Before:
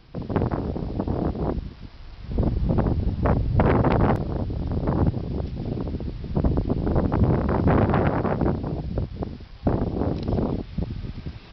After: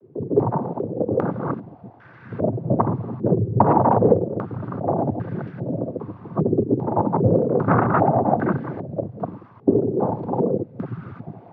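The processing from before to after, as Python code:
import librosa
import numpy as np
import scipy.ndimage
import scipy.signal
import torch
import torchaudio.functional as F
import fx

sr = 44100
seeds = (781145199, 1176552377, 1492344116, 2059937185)

y = fx.noise_vocoder(x, sr, seeds[0], bands=16)
y = fx.filter_held_lowpass(y, sr, hz=2.5, low_hz=410.0, high_hz=1600.0)
y = F.gain(torch.from_numpy(y), 1.0).numpy()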